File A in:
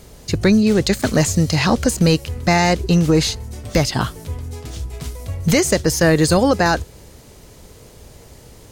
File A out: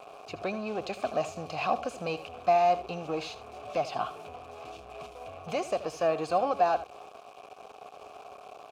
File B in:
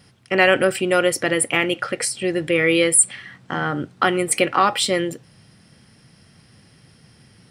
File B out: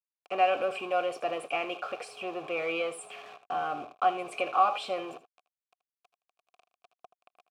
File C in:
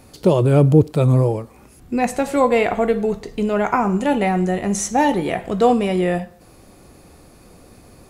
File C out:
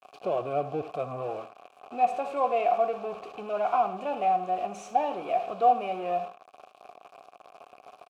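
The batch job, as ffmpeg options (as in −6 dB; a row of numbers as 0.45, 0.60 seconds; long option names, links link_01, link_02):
-filter_complex "[0:a]aeval=exprs='val(0)+0.5*0.119*sgn(val(0))':channel_layout=same,aeval=exprs='val(0)+0.00794*sin(2*PI*420*n/s)':channel_layout=same,aeval=exprs='val(0)*gte(abs(val(0)),0.075)':channel_layout=same,asplit=3[link_01][link_02][link_03];[link_01]bandpass=frequency=730:width_type=q:width=8,volume=0dB[link_04];[link_02]bandpass=frequency=1090:width_type=q:width=8,volume=-6dB[link_05];[link_03]bandpass=frequency=2440:width_type=q:width=8,volume=-9dB[link_06];[link_04][link_05][link_06]amix=inputs=3:normalize=0,asplit=2[link_07][link_08];[link_08]aecho=0:1:79:0.188[link_09];[link_07][link_09]amix=inputs=2:normalize=0,volume=-2dB"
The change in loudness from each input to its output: −13.5, −11.5, −10.0 LU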